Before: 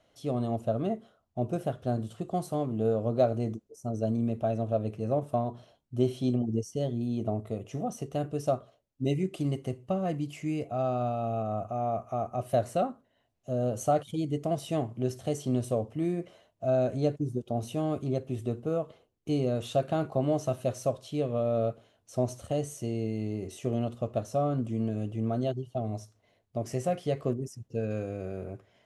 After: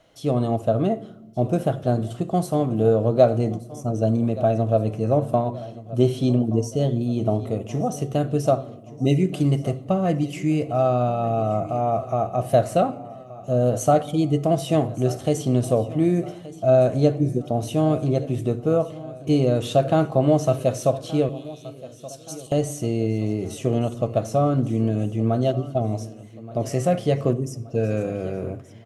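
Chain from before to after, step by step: 21.29–22.52 s: steep high-pass 2.9 kHz; feedback delay 1175 ms, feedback 51%, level -18 dB; simulated room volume 2800 m³, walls furnished, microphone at 0.63 m; trim +8.5 dB

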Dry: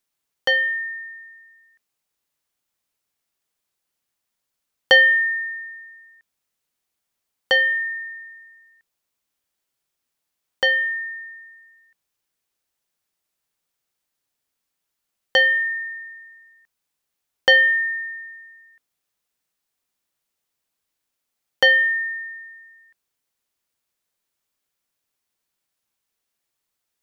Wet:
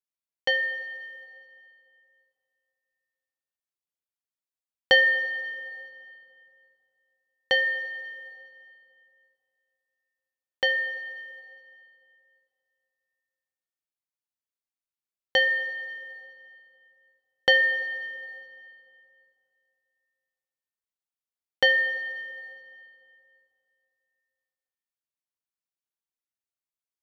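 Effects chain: gate -42 dBFS, range -14 dB; plate-style reverb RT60 2.6 s, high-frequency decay 0.8×, DRR 10 dB; trim -5 dB

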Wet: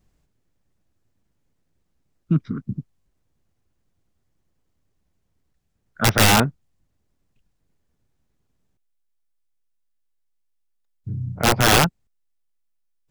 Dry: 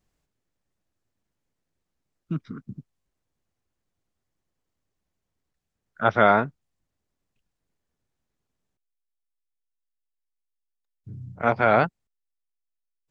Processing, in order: integer overflow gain 13.5 dB; bass shelf 300 Hz +8 dB; trim +4 dB

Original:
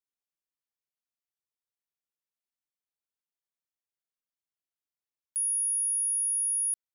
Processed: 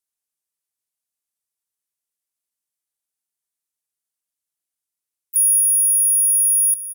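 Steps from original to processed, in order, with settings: peaking EQ 10 kHz +13.5 dB 1.4 oct; harmony voices +5 st -16 dB, +7 st -15 dB; delay 241 ms -15 dB

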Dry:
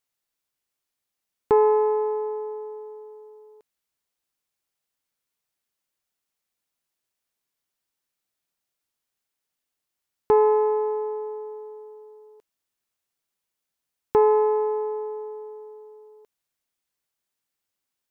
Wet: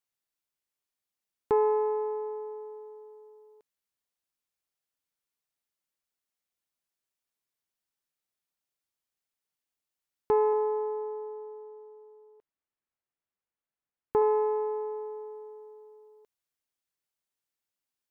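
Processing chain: 10.53–14.22 s: low-pass 2.1 kHz 12 dB/octave; trim -6.5 dB

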